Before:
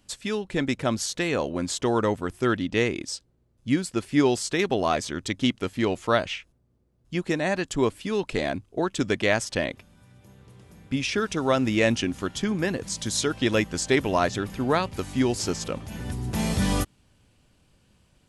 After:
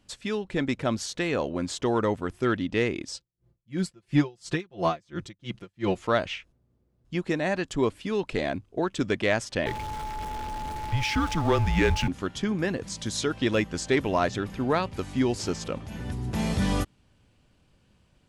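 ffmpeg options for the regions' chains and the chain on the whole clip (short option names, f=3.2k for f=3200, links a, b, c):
-filter_complex "[0:a]asettb=1/sr,asplit=3[a][b][c];[a]atrim=end=3.144[d];[b]atrim=start=3.14:end=5.95,asetpts=PTS-STARTPTS,afade=t=in:d=0.004:c=qsin,afade=t=out:st=2.806:d=0.004:c=qsin,equalizer=f=90:w=1.3:g=12.5,aecho=1:1:5.8:0.94,atrim=end_sample=123921,aeval=exprs='val(0)*pow(10,-34*(0.5-0.5*cos(2*PI*2.9*n/s))/20)':c=same[e];[c]atrim=start=5.946[f];[d][e]acrossfade=d=0.004:c1=hsin:c2=qsin[g];[g][f]acrossfade=d=0.004:c1=qsin:c2=hsin,asettb=1/sr,asplit=3[h][i][j];[h]atrim=end=9.664[k];[i]atrim=start=9.66:end=12.08,asetpts=PTS-STARTPTS,afade=t=in:d=0.004:c=qsin,afade=t=out:st=2.416:d=0.004:c=qsin,aeval=exprs='val(0)+0.5*0.0299*sgn(val(0))':c=same,afreqshift=-150,aeval=exprs='val(0)+0.0251*sin(2*PI*860*n/s)':c=same[l];[j]atrim=start=12.076[m];[k][l]acrossfade=d=0.004:c1=hsin:c2=qsin[n];[n][m]acrossfade=d=0.004:c1=qsin:c2=hsin,highshelf=f=7.7k:g=-11,acontrast=80,volume=-8dB"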